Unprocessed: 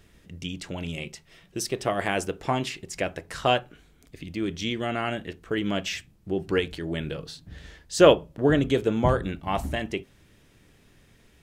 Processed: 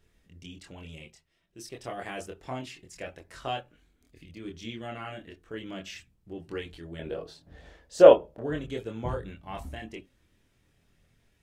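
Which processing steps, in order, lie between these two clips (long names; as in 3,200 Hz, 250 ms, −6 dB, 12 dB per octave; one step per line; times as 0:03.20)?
0:06.99–0:08.41: parametric band 620 Hz +14.5 dB 1.8 octaves
multi-voice chorus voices 4, 0.26 Hz, delay 25 ms, depth 2.1 ms
0:01.00–0:01.79: duck −9.5 dB, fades 0.33 s
level −8 dB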